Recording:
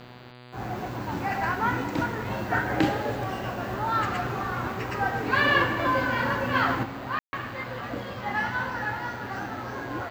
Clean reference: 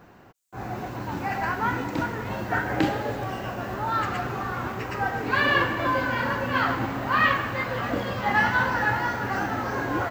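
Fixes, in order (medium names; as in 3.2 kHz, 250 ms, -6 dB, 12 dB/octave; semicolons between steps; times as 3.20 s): de-click; de-hum 123.5 Hz, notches 39; room tone fill 7.19–7.33 s; trim 0 dB, from 6.83 s +6.5 dB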